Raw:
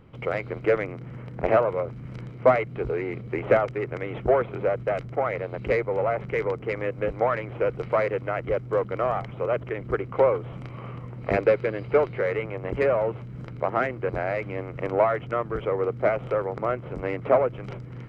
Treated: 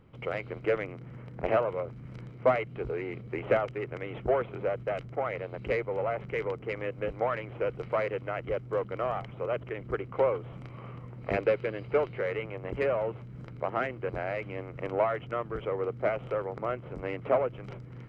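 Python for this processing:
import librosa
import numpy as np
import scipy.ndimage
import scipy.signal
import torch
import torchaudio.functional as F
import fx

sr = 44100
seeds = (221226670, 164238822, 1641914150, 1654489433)

y = fx.dynamic_eq(x, sr, hz=2900.0, q=3.4, threshold_db=-50.0, ratio=4.0, max_db=6)
y = y * librosa.db_to_amplitude(-6.0)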